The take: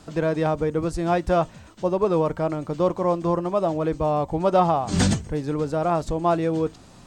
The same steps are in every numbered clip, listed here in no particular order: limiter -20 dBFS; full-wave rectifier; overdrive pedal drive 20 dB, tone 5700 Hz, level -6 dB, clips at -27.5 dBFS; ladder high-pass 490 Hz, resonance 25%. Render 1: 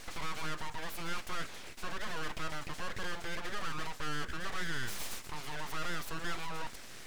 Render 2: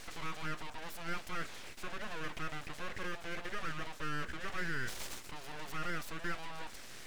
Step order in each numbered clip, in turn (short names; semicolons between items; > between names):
limiter > ladder high-pass > overdrive pedal > full-wave rectifier; limiter > overdrive pedal > ladder high-pass > full-wave rectifier